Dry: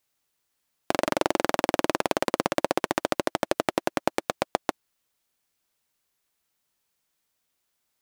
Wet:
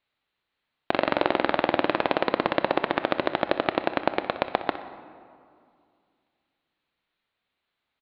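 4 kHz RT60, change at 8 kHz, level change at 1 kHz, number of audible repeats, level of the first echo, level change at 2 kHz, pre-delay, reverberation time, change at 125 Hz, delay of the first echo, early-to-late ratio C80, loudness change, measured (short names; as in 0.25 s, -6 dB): 1.2 s, under -30 dB, +2.0 dB, 2, -13.5 dB, +3.0 dB, 21 ms, 2.3 s, +0.5 dB, 62 ms, 12.5 dB, +1.5 dB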